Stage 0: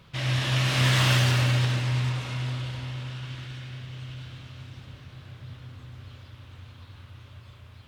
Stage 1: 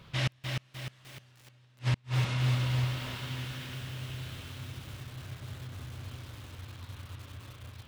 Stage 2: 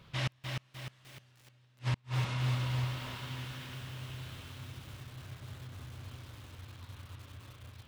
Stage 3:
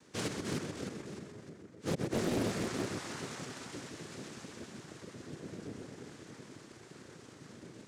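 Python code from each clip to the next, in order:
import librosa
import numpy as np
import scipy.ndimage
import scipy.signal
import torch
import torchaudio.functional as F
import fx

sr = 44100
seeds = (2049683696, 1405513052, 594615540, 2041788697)

y1 = fx.gate_flip(x, sr, shuts_db=-18.0, range_db=-38)
y1 = fx.echo_crushed(y1, sr, ms=303, feedback_pct=55, bits=8, wet_db=-4.0)
y2 = fx.dynamic_eq(y1, sr, hz=1000.0, q=2.0, threshold_db=-57.0, ratio=4.0, max_db=4)
y2 = y2 * 10.0 ** (-4.0 / 20.0)
y3 = fx.echo_filtered(y2, sr, ms=129, feedback_pct=77, hz=3100.0, wet_db=-4.0)
y3 = fx.noise_vocoder(y3, sr, seeds[0], bands=3)
y3 = fx.doppler_dist(y3, sr, depth_ms=0.71)
y3 = y3 * 10.0 ** (-1.5 / 20.0)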